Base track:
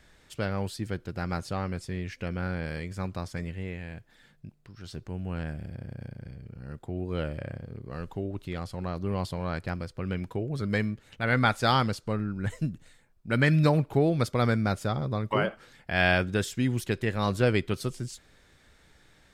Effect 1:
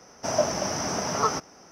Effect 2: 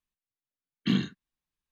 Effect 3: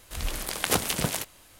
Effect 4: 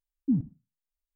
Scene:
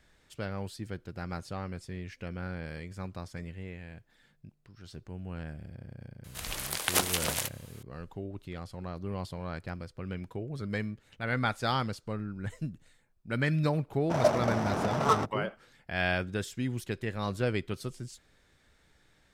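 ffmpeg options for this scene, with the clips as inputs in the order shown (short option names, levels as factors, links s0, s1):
-filter_complex "[0:a]volume=0.501[s0];[3:a]lowshelf=f=360:g=-12[s1];[1:a]adynamicsmooth=sensitivity=3:basefreq=600[s2];[s1]atrim=end=1.59,asetpts=PTS-STARTPTS,volume=0.891,afade=t=in:d=0.004:c=hsin,afade=t=out:st=1.586:d=0.004:c=hsin,adelay=6240[s3];[s2]atrim=end=1.71,asetpts=PTS-STARTPTS,volume=0.944,afade=t=in:d=0.1,afade=t=out:st=1.61:d=0.1,adelay=13860[s4];[s0][s3][s4]amix=inputs=3:normalize=0"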